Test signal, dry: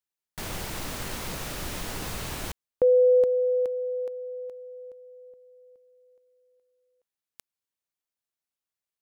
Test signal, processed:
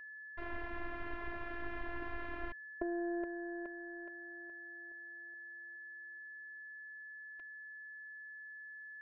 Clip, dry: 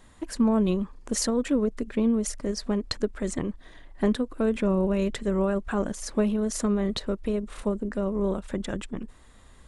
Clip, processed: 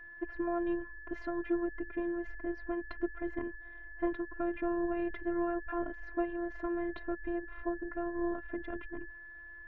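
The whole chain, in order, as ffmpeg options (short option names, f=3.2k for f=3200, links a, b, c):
-af "aeval=exprs='val(0)+0.00708*sin(2*PI*1700*n/s)':c=same,afftfilt=real='hypot(re,im)*cos(PI*b)':imag='0':win_size=512:overlap=0.75,lowpass=f=2.2k:w=0.5412,lowpass=f=2.2k:w=1.3066,volume=-3.5dB"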